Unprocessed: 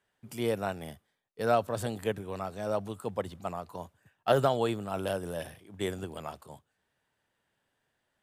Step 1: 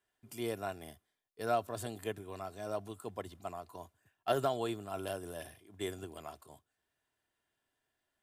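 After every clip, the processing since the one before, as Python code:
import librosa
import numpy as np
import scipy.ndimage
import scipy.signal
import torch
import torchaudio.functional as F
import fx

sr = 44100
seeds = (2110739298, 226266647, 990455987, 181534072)

y = fx.high_shelf(x, sr, hz=5500.0, db=5.5)
y = y + 0.44 * np.pad(y, (int(2.9 * sr / 1000.0), 0))[:len(y)]
y = y * 10.0 ** (-7.5 / 20.0)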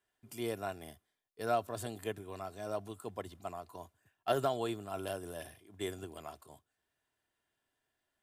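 y = x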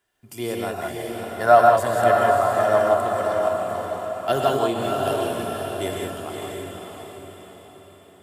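y = fx.spec_box(x, sr, start_s=0.78, length_s=2.2, low_hz=500.0, high_hz=2100.0, gain_db=10)
y = fx.echo_diffused(y, sr, ms=573, feedback_pct=47, wet_db=-3.5)
y = fx.rev_gated(y, sr, seeds[0], gate_ms=210, shape='rising', drr_db=0.0)
y = y * 10.0 ** (8.5 / 20.0)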